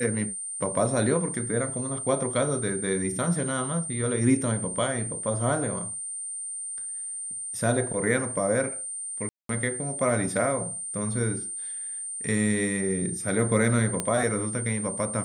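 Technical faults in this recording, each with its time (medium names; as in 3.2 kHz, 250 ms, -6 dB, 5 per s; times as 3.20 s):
whine 8.9 kHz -32 dBFS
9.29–9.49 s: dropout 203 ms
14.00 s: pop -12 dBFS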